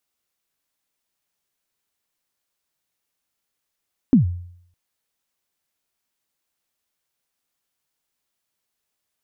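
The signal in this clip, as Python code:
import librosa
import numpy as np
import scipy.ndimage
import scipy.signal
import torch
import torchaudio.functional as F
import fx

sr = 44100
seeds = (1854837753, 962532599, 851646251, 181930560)

y = fx.drum_kick(sr, seeds[0], length_s=0.61, level_db=-7.0, start_hz=290.0, end_hz=88.0, sweep_ms=122.0, decay_s=0.66, click=False)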